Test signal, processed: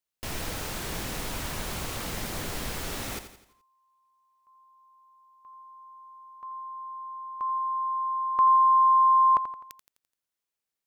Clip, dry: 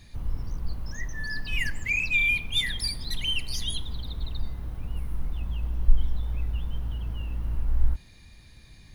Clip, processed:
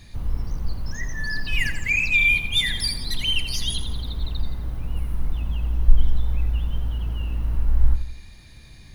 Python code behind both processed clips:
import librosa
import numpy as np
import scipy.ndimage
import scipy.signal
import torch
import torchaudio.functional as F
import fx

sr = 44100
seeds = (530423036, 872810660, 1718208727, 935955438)

y = fx.echo_feedback(x, sr, ms=85, feedback_pct=46, wet_db=-10.5)
y = y * librosa.db_to_amplitude(4.5)